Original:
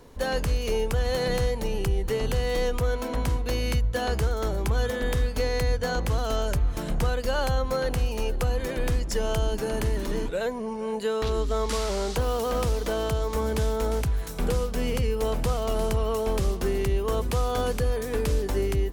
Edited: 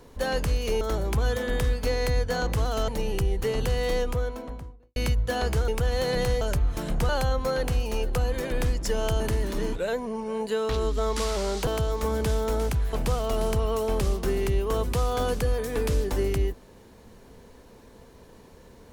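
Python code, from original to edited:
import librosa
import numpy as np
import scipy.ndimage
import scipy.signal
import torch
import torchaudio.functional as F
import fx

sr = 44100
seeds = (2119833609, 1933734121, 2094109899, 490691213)

y = fx.studio_fade_out(x, sr, start_s=2.52, length_s=1.1)
y = fx.edit(y, sr, fx.swap(start_s=0.81, length_s=0.73, other_s=4.34, other_length_s=2.07),
    fx.cut(start_s=7.09, length_s=0.26),
    fx.cut(start_s=9.46, length_s=0.27),
    fx.cut(start_s=12.2, length_s=0.79),
    fx.cut(start_s=14.25, length_s=1.06), tone=tone)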